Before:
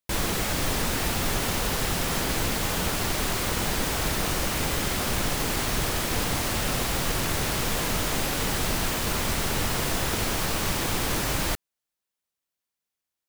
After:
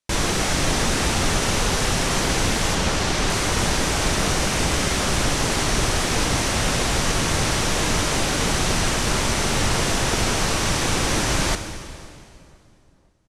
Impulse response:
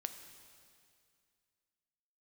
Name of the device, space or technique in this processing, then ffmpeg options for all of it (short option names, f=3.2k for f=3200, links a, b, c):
stairwell: -filter_complex "[1:a]atrim=start_sample=2205[a];[0:a][a]afir=irnorm=-1:irlink=0,lowpass=f=9.9k:w=0.5412,lowpass=f=9.9k:w=1.3066,asettb=1/sr,asplit=3[b][c][d];[b]atrim=end=2.754[e];[c]atrim=start=2.75:end=3.3,asetpts=PTS-STARTPTS,afade=t=in:d=0.004:c=qsin,afade=t=out:st=0.546:d=0.004:c=qsin,acrossover=split=7600[f][g];[g]acompressor=threshold=-47dB:ratio=4:attack=1:release=60[h];[f][h]amix=inputs=2:normalize=0[i];[d]atrim=start=3.296[j];[e][i]acrossfade=d=0.004:c1=hsin:c2=qsin[k];[k][j]acrossfade=d=0.004:c1=qsin:c2=hsin,equalizer=f=5.9k:t=o:w=0.21:g=4,asplit=2[l][m];[m]adelay=513,lowpass=f=1.2k:p=1,volume=-22.5dB,asplit=2[n][o];[o]adelay=513,lowpass=f=1.2k:p=1,volume=0.49,asplit=2[p][q];[q]adelay=513,lowpass=f=1.2k:p=1,volume=0.49[r];[l][n][p][r]amix=inputs=4:normalize=0,volume=7.5dB"